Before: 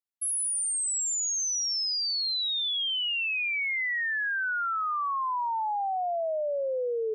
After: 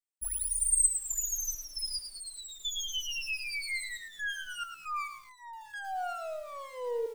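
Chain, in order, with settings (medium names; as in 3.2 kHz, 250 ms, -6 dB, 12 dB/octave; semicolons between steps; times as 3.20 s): comb filter that takes the minimum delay 6.6 ms; peaking EQ 8.3 kHz +13.5 dB 0.31 oct; comb 4.3 ms, depth 85%; trance gate "xxxx.xx.x...xx" 68 bpm -12 dB; bit-crushed delay 108 ms, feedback 35%, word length 7-bit, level -9 dB; trim -8 dB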